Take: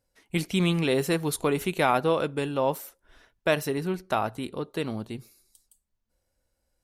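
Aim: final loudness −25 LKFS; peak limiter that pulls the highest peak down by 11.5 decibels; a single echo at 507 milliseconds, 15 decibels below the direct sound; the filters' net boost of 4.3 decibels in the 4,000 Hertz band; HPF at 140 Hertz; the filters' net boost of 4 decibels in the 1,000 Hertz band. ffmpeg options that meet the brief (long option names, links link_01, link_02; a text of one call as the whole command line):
ffmpeg -i in.wav -af "highpass=140,equalizer=frequency=1000:width_type=o:gain=5,equalizer=frequency=4000:width_type=o:gain=5,alimiter=limit=-17.5dB:level=0:latency=1,aecho=1:1:507:0.178,volume=5dB" out.wav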